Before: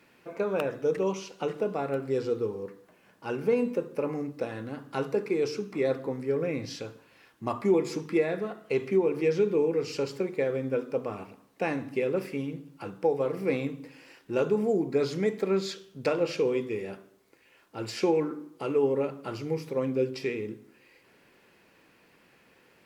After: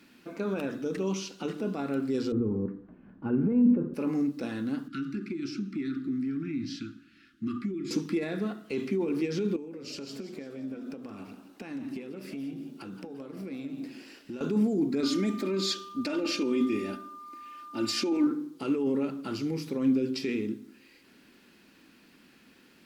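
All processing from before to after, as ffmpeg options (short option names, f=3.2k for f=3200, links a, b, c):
-filter_complex "[0:a]asettb=1/sr,asplit=3[a][b][c];[a]atrim=end=2.324[d];[b]atrim=start=2.32:end=3.94,asetpts=PTS-STARTPTS,afade=t=in:d=0.004:c=qsin,afade=t=out:st=1.616:d=0.004:c=qsin,lowpass=1.6k,aemphasis=mode=reproduction:type=riaa[e];[c]atrim=start=3.936[f];[d][e]acrossfade=d=0.004:c1=hsin:c2=qsin[g];[g][f]acrossfade=d=0.004:c1=qsin:c2=hsin,asettb=1/sr,asplit=3[h][i][j];[h]atrim=end=4.884[k];[i]atrim=start=4.88:end=7.91,asetpts=PTS-STARTPTS,afade=t=in:d=0.004:c=qsin,afade=t=out:st=3.026:d=0.004:c=qsin,asuperstop=centerf=670:order=20:qfactor=0.81,aemphasis=mode=reproduction:type=75kf,acompressor=threshold=-34dB:ratio=10:attack=3.2:release=140:knee=1:detection=peak[l];[j]atrim=start=7.906[m];[k][l]acrossfade=d=0.004:c1=hsin:c2=qsin[n];[n][m]acrossfade=d=0.004:c1=qsin:c2=hsin,asettb=1/sr,asplit=3[o][p][q];[o]atrim=end=9.564[r];[p]atrim=start=9.56:end=14.41,asetpts=PTS-STARTPTS,afade=t=in:d=0.004:c=qsin,afade=t=out:st=4.846:d=0.004:c=qsin,acompressor=threshold=-40dB:ratio=5:attack=3.2:release=140:knee=1:detection=peak,asplit=5[s][t][u][v][w];[t]adelay=172,afreqshift=87,volume=-11.5dB[x];[u]adelay=344,afreqshift=174,volume=-18.8dB[y];[v]adelay=516,afreqshift=261,volume=-26.2dB[z];[w]adelay=688,afreqshift=348,volume=-33.5dB[aa];[s][x][y][z][aa]amix=inputs=5:normalize=0,atrim=end_sample=213885[ab];[q]atrim=start=14.406[ac];[r][ab]acrossfade=d=0.004:c1=hsin:c2=qsin[ad];[ad][ac]acrossfade=d=0.004:c1=qsin:c2=hsin,asettb=1/sr,asplit=3[ae][af][ag];[ae]atrim=end=15.034[ah];[af]atrim=start=15.03:end=18.27,asetpts=PTS-STARTPTS,afade=t=in:d=0.004:c=qsin,afade=t=out:st=3.236:d=0.004:c=qsin,aecho=1:1:3.3:0.89,atrim=end_sample=142884,aeval=exprs='val(0)+0.00794*sin(2*PI*1200*n/s)':c=same[ai];[ag]atrim=start=18.266[aj];[ah][ai]acrossfade=d=0.004:c1=hsin:c2=qsin[ak];[ak][aj]acrossfade=d=0.004:c1=qsin:c2=hsin,equalizer=f=1.4k:w=1.2:g=5,alimiter=limit=-23dB:level=0:latency=1:release=13,equalizer=f=125:t=o:w=1:g=-7,equalizer=f=250:t=o:w=1:g=10,equalizer=f=500:t=o:w=1:g=-9,equalizer=f=1k:t=o:w=1:g=-7,equalizer=f=2k:t=o:w=1:g=-6,equalizer=f=4k:t=o:w=1:g=4,volume=3dB"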